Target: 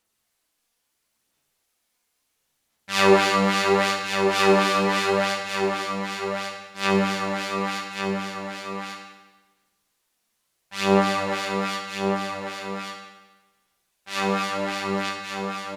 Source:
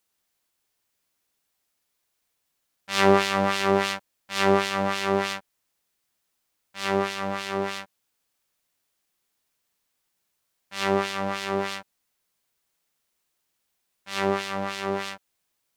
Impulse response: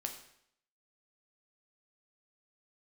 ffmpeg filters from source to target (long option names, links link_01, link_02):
-filter_complex "[0:a]aphaser=in_gain=1:out_gain=1:delay=4.3:decay=0.45:speed=0.73:type=sinusoidal,aecho=1:1:1142:0.501[link_01];[1:a]atrim=start_sample=2205,asetrate=25578,aresample=44100[link_02];[link_01][link_02]afir=irnorm=-1:irlink=0"